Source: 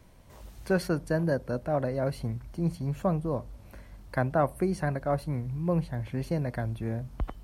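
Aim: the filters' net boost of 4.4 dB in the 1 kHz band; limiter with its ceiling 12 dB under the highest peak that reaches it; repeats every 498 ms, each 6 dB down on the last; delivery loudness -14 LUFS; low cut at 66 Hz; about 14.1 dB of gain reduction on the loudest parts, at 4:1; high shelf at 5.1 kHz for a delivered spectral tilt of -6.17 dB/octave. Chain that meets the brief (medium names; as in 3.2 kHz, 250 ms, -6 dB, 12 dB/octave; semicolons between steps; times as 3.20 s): high-pass 66 Hz; peaking EQ 1 kHz +6 dB; treble shelf 5.1 kHz +8 dB; compression 4:1, threshold -36 dBFS; peak limiter -33 dBFS; feedback delay 498 ms, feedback 50%, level -6 dB; trim +28.5 dB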